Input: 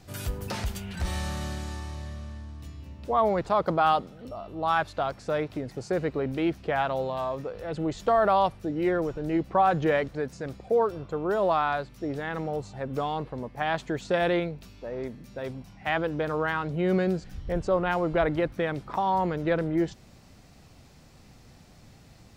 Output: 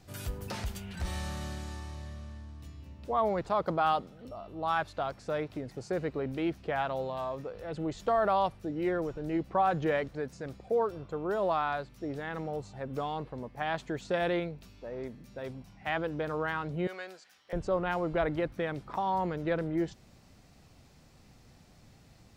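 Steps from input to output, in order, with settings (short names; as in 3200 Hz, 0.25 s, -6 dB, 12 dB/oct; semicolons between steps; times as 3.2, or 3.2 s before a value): 16.87–17.53 HPF 970 Hz 12 dB/oct; gain -5 dB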